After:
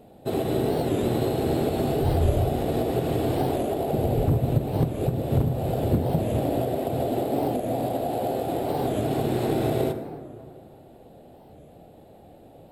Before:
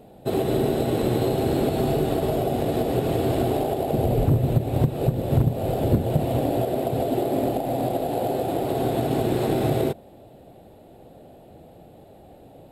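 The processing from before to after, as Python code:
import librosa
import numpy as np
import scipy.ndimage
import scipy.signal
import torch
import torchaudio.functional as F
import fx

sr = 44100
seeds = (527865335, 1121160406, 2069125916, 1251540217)

y = fx.low_shelf_res(x, sr, hz=130.0, db=12.0, q=1.5, at=(2.03, 2.48))
y = fx.rev_plate(y, sr, seeds[0], rt60_s=2.4, hf_ratio=0.4, predelay_ms=0, drr_db=8.0)
y = fx.record_warp(y, sr, rpm=45.0, depth_cents=160.0)
y = y * 10.0 ** (-2.5 / 20.0)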